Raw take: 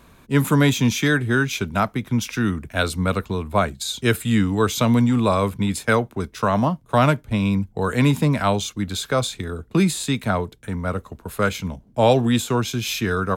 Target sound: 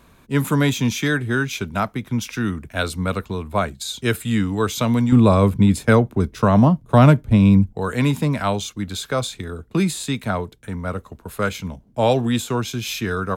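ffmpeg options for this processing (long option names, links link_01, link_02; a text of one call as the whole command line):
ffmpeg -i in.wav -filter_complex "[0:a]asettb=1/sr,asplit=3[link_01][link_02][link_03];[link_01]atrim=end=5.124[link_04];[link_02]atrim=start=5.12:end=7.73,asetpts=PTS-STARTPTS,afade=type=in:duration=0.004:curve=qsin,afade=type=out:start_time=2.606:duration=0.004:curve=qsin,lowshelf=frequency=490:gain=10.5[link_05];[link_03]atrim=start=7.726[link_06];[link_04][link_05]acrossfade=duration=0.004:curve1=hsin:curve2=qsin[link_07];[link_07][link_06]acrossfade=duration=0.004:curve1=qsin:curve2=hsin,volume=-1.5dB" out.wav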